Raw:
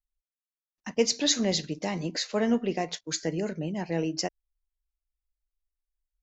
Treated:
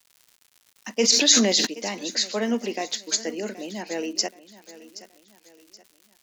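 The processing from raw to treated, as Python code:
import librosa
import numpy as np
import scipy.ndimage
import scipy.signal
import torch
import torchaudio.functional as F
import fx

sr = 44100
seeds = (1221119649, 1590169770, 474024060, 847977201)

y = scipy.signal.sosfilt(scipy.signal.ellip(4, 1.0, 40, 210.0, 'highpass', fs=sr, output='sos'), x)
y = fx.dmg_crackle(y, sr, seeds[0], per_s=190.0, level_db=-48.0)
y = fx.high_shelf(y, sr, hz=2200.0, db=10.0)
y = fx.echo_feedback(y, sr, ms=775, feedback_pct=39, wet_db=-17.0)
y = fx.sustainer(y, sr, db_per_s=37.0, at=(1.0, 1.65), fade=0.02)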